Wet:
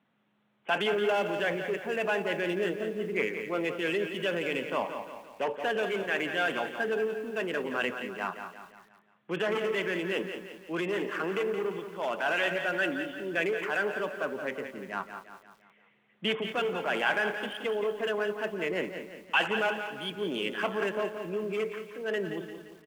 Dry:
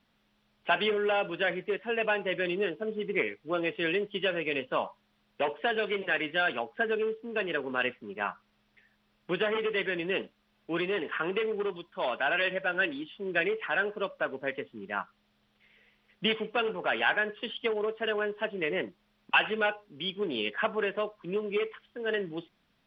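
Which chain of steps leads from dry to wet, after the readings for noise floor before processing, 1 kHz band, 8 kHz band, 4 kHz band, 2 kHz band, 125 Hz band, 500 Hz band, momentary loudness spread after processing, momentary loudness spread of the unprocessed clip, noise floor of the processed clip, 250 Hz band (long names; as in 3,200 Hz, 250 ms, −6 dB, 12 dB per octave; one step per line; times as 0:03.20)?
−72 dBFS, −0.5 dB, can't be measured, −1.5 dB, −1.0 dB, +1.5 dB, +0.5 dB, 9 LU, 9 LU, −67 dBFS, +1.0 dB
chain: adaptive Wiener filter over 9 samples
high-pass filter 120 Hz 24 dB per octave
transient designer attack −3 dB, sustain +4 dB
repeating echo 173 ms, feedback 48%, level −9 dB
feedback echo at a low word length 201 ms, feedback 35%, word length 8 bits, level −13 dB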